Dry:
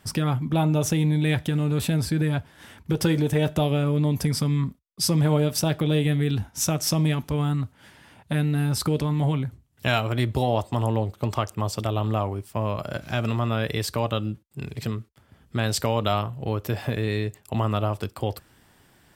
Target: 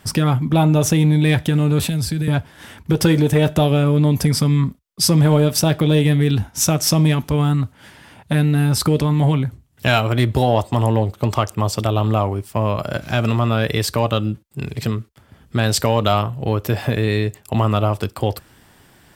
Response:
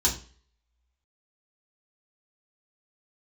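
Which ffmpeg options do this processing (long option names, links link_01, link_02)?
-filter_complex "[0:a]asettb=1/sr,asplit=3[link_01][link_02][link_03];[link_01]atrim=end=1.804[link_04];[link_02]atrim=start=1.8:end=2.28,asetpts=PTS-STARTPTS,afade=type=in:duration=0.004:curve=qsin,afade=type=out:start_time=0.476:duration=0.004:curve=qsin,acrossover=split=140|3000[link_05][link_06][link_07];[link_06]acompressor=threshold=-33dB:ratio=6[link_08];[link_05][link_08][link_07]amix=inputs=3:normalize=0[link_09];[link_03]atrim=start=2.276[link_10];[link_04][link_09]acrossfade=duration=0.004:curve1=hsin:curve2=qsin[link_11];[link_11][link_10]acrossfade=duration=0.004:curve1=qsin:curve2=hsin,asplit=2[link_12][link_13];[link_13]aeval=exprs='clip(val(0),-1,0.168)':channel_layout=same,volume=-7dB[link_14];[link_12][link_14]amix=inputs=2:normalize=0,volume=4dB"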